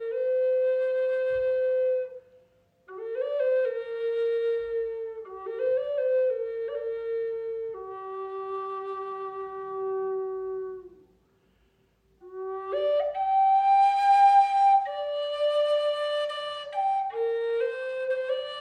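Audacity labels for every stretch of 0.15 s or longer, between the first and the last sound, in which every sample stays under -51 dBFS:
2.380000	2.880000	silence
11.040000	12.220000	silence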